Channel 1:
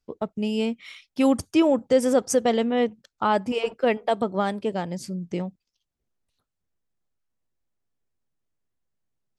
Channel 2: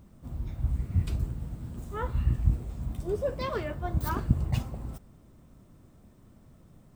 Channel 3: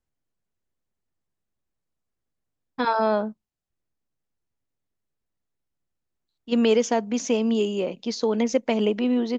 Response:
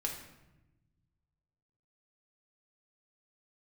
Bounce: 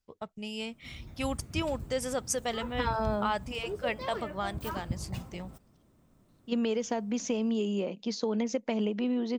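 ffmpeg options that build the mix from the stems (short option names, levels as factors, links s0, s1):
-filter_complex "[0:a]equalizer=f=310:w=0.49:g=-13,volume=0.708[s0];[1:a]lowshelf=f=120:g=-8.5,adelay=600,volume=0.531[s1];[2:a]equalizer=f=200:t=o:w=0.21:g=6.5,acompressor=threshold=0.0891:ratio=6,volume=0.562[s2];[s0][s1][s2]amix=inputs=3:normalize=0"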